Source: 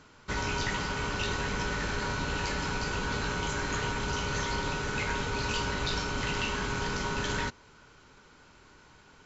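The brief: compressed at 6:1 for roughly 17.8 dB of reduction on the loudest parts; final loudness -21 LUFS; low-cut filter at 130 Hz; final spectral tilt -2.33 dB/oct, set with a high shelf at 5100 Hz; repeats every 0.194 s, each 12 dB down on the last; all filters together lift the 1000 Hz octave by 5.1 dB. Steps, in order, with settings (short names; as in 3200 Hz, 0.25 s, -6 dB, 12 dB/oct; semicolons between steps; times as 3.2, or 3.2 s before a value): HPF 130 Hz; bell 1000 Hz +5.5 dB; high shelf 5100 Hz +9 dB; compressor 6:1, threshold -46 dBFS; feedback echo 0.194 s, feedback 25%, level -12 dB; gain +25.5 dB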